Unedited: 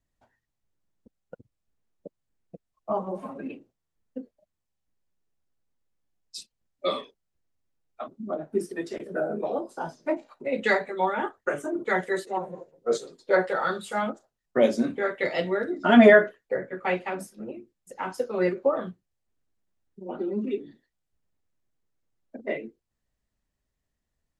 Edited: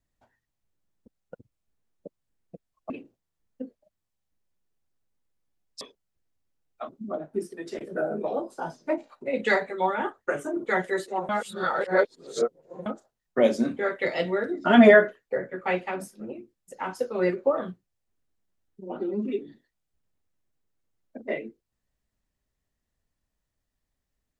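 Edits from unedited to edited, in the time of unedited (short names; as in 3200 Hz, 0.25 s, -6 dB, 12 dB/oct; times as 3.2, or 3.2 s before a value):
2.9–3.46 cut
6.37–7 cut
8.2–8.85 fade out, to -6.5 dB
12.48–14.05 reverse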